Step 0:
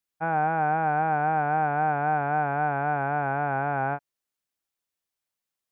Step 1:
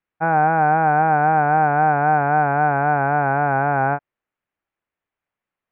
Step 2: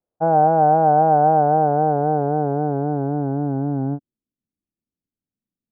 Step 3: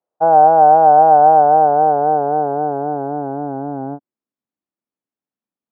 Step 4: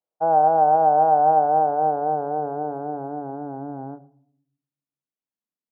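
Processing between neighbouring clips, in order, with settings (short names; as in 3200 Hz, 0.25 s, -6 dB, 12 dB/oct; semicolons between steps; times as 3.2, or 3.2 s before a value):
LPF 2400 Hz 24 dB/oct; gain +8 dB
low-pass sweep 600 Hz -> 240 Hz, 1.27–4.34
band-pass 890 Hz, Q 1; gain +7 dB
shoebox room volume 990 m³, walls furnished, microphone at 0.57 m; gain -8.5 dB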